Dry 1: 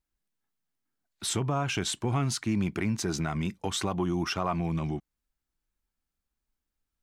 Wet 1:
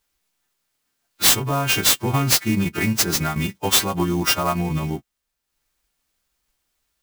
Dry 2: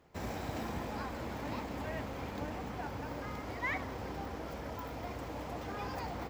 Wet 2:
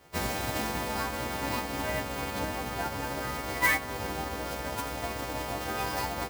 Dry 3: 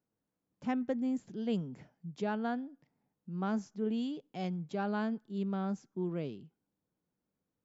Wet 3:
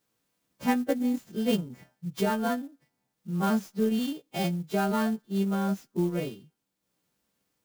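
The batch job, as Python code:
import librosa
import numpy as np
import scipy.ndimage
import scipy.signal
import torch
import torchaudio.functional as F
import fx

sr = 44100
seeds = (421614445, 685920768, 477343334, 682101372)

y = fx.freq_snap(x, sr, grid_st=2)
y = fx.transient(y, sr, attack_db=4, sustain_db=-6)
y = fx.clock_jitter(y, sr, seeds[0], jitter_ms=0.027)
y = F.gain(torch.from_numpy(y), 7.0).numpy()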